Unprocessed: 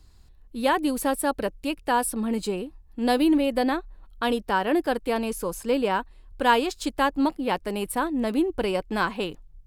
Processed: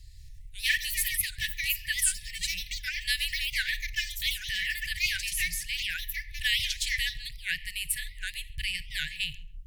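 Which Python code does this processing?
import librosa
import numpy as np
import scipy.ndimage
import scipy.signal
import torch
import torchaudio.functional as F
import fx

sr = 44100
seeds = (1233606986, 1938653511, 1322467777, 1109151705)

y = fx.echo_filtered(x, sr, ms=136, feedback_pct=21, hz=1800.0, wet_db=-16.5)
y = fx.rev_freeverb(y, sr, rt60_s=0.57, hf_ratio=0.55, predelay_ms=10, drr_db=16.5)
y = fx.echo_pitch(y, sr, ms=172, semitones=5, count=2, db_per_echo=-6.0)
y = fx.brickwall_bandstop(y, sr, low_hz=150.0, high_hz=1700.0)
y = fx.record_warp(y, sr, rpm=78.0, depth_cents=250.0)
y = F.gain(torch.from_numpy(y), 4.5).numpy()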